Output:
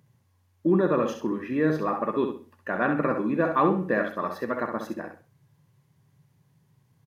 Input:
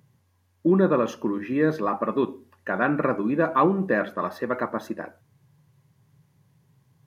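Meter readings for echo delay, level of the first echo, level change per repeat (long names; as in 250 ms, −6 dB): 65 ms, −6.5 dB, −12.0 dB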